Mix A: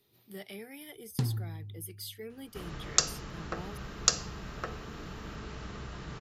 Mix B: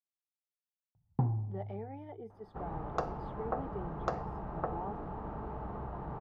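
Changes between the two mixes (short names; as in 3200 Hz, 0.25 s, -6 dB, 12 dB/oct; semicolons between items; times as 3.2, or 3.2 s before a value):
speech: entry +1.20 s; first sound: add air absorption 370 m; master: add synth low-pass 840 Hz, resonance Q 4.1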